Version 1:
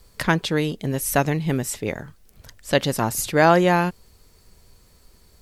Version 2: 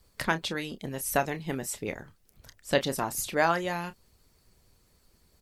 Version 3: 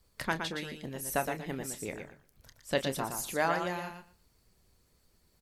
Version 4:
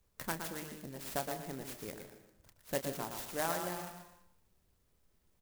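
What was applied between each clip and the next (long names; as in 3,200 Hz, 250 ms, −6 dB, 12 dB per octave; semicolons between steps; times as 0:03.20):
harmonic and percussive parts rebalanced harmonic −10 dB; double-tracking delay 30 ms −12 dB; level −5.5 dB
repeating echo 117 ms, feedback 16%, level −6.5 dB; level −5 dB
convolution reverb RT60 0.75 s, pre-delay 105 ms, DRR 10.5 dB; converter with an unsteady clock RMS 0.085 ms; level −6 dB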